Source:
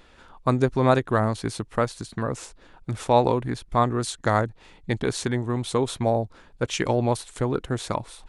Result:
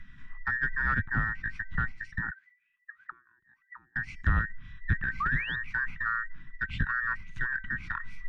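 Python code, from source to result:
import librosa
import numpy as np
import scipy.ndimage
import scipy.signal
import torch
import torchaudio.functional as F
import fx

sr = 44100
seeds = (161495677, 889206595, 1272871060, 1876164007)

y = fx.band_invert(x, sr, width_hz=2000)
y = fx.comb_fb(y, sr, f0_hz=770.0, decay_s=0.33, harmonics='all', damping=0.0, mix_pct=50)
y = fx.auto_wah(y, sr, base_hz=350.0, top_hz=2900.0, q=20.0, full_db=-23.0, direction='down', at=(2.3, 3.96))
y = scipy.signal.sosfilt(scipy.signal.cheby1(2, 1.0, [160.0, 1800.0], 'bandstop', fs=sr, output='sos'), y)
y = fx.riaa(y, sr, side='playback')
y = fx.spec_paint(y, sr, seeds[0], shape='rise', start_s=5.2, length_s=0.36, low_hz=1100.0, high_hz=3800.0, level_db=-33.0)
y = 10.0 ** (-24.0 / 20.0) * np.tanh(y / 10.0 ** (-24.0 / 20.0))
y = fx.env_lowpass_down(y, sr, base_hz=1900.0, full_db=-33.0)
y = fx.high_shelf(y, sr, hz=2100.0, db=-8.5)
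y = F.gain(torch.from_numpy(y), 8.0).numpy()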